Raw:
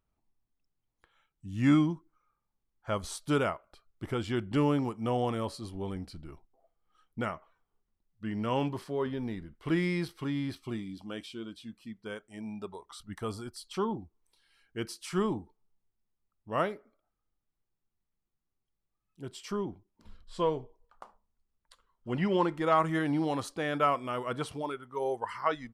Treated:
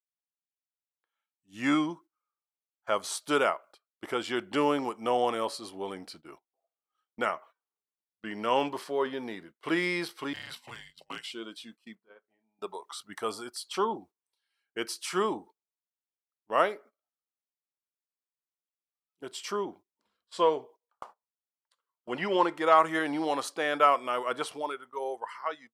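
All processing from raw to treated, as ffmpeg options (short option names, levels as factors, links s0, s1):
-filter_complex "[0:a]asettb=1/sr,asplit=3[s0][s1][s2];[s0]atrim=end=10.334[s3];[s1]atrim=start=10.33:end=11.31,asetpts=PTS-STARTPTS,afade=t=in:d=0.004:c=qsin,afade=t=out:st=0.976:d=0.004:c=qsin,afreqshift=-250,aeval=exprs='clip(val(0),-1,0.02)':c=same[s4];[s2]atrim=start=11.306[s5];[s3][s4]acrossfade=d=0.004:c1=hsin:c2=qsin[s6];[s6][s5]acrossfade=d=0.004:c1=qsin:c2=hsin,asettb=1/sr,asplit=3[s7][s8][s9];[s7]atrim=end=11.954[s10];[s8]atrim=start=11.95:end=12.59,asetpts=PTS-STARTPTS,afade=t=in:d=0.004:c=qsin,afade=t=out:st=0.636:d=0.004:c=qsin,lowpass=1800,acompressor=threshold=0.00282:ratio=20:attack=3.2:release=140:knee=1:detection=peak,asplit=2[s11][s12];[s12]adelay=36,volume=0.355[s13];[s11][s13]amix=inputs=2:normalize=0,atrim=end_sample=28224[s14];[s9]atrim=start=12.586[s15];[s10][s14]acrossfade=d=0.004:c1=hsin:c2=qsin[s16];[s16][s15]acrossfade=d=0.004:c1=qsin:c2=hsin,dynaudnorm=f=330:g=7:m=3.76,highpass=440,agate=range=0.112:threshold=0.00562:ratio=16:detection=peak,volume=0.562"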